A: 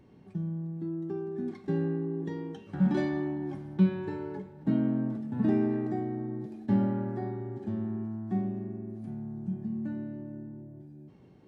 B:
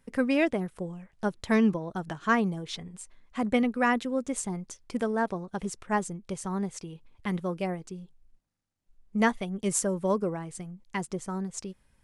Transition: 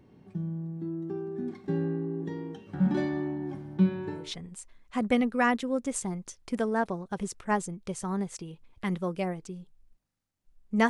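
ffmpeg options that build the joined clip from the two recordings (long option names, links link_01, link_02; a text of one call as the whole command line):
ffmpeg -i cue0.wav -i cue1.wav -filter_complex "[0:a]apad=whole_dur=10.89,atrim=end=10.89,atrim=end=4.34,asetpts=PTS-STARTPTS[link_01];[1:a]atrim=start=2.52:end=9.31,asetpts=PTS-STARTPTS[link_02];[link_01][link_02]acrossfade=duration=0.24:curve1=tri:curve2=tri" out.wav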